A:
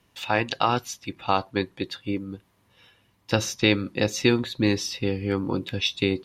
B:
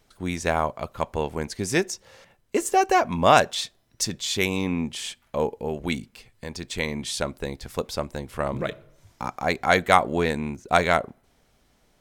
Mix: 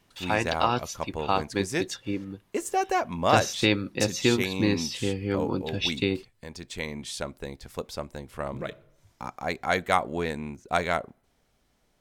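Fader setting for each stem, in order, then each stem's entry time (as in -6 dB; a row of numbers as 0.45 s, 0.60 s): -2.5 dB, -6.0 dB; 0.00 s, 0.00 s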